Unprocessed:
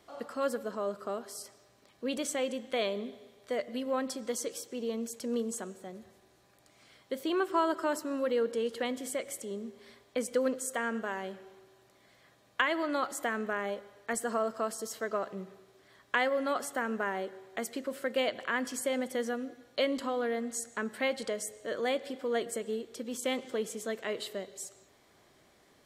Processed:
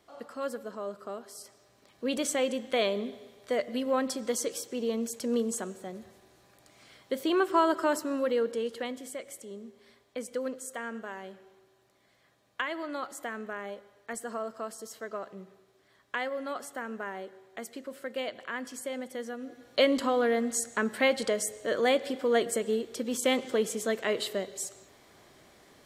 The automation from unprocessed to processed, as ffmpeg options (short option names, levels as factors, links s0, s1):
-af "volume=5.31,afade=t=in:st=1.35:d=0.9:silence=0.446684,afade=t=out:st=7.9:d=1.19:silence=0.375837,afade=t=in:st=19.37:d=0.44:silence=0.298538"